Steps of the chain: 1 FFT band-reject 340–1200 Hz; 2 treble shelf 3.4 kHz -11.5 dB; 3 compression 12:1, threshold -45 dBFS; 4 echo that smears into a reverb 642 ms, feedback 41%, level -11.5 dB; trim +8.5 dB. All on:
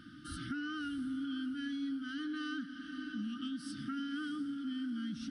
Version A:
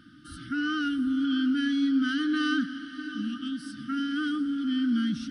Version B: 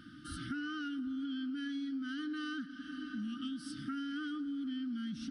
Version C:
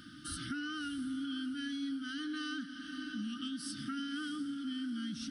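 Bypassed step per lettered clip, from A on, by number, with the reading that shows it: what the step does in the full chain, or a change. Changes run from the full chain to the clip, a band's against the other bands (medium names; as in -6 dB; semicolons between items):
3, mean gain reduction 8.5 dB; 4, echo-to-direct -10.5 dB to none; 2, 8 kHz band +8.0 dB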